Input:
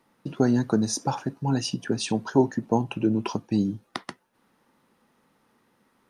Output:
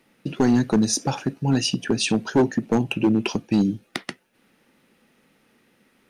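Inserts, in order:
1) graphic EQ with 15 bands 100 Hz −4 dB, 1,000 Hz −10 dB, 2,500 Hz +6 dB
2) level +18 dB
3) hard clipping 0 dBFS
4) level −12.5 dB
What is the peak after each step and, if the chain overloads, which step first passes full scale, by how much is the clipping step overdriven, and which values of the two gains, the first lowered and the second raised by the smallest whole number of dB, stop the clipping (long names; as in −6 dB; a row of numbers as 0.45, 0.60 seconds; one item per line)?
−9.5, +8.5, 0.0, −12.5 dBFS
step 2, 8.5 dB
step 2 +9 dB, step 4 −3.5 dB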